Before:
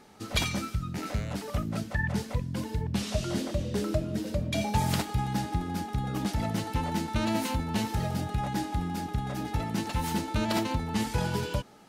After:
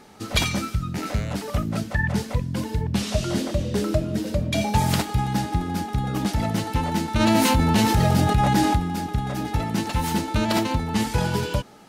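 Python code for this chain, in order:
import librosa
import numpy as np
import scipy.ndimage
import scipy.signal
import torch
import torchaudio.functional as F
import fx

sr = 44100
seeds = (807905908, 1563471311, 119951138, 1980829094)

y = fx.env_flatten(x, sr, amount_pct=70, at=(7.19, 8.76), fade=0.02)
y = y * 10.0 ** (6.0 / 20.0)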